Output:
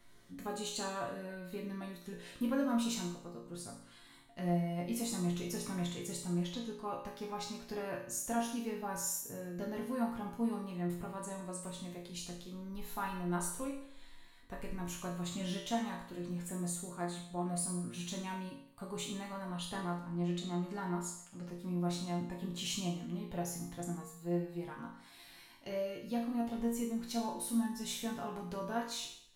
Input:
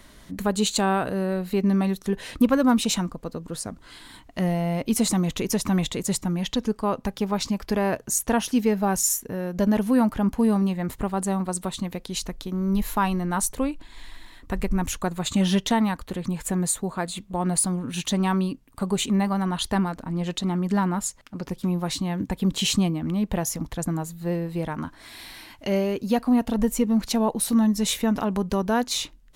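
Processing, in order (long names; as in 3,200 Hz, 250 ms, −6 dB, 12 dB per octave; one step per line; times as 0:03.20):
resonators tuned to a chord A#2 minor, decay 0.64 s
level +4.5 dB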